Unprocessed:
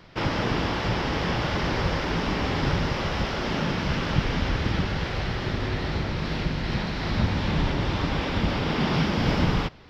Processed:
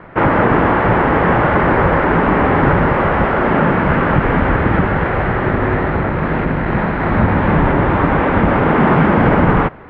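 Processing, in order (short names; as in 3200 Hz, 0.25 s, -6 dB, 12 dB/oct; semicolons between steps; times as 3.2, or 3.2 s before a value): LPF 1800 Hz 24 dB/oct; low shelf 190 Hz -9 dB; maximiser +17.5 dB; 5.82–7.12 core saturation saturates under 190 Hz; gain -1 dB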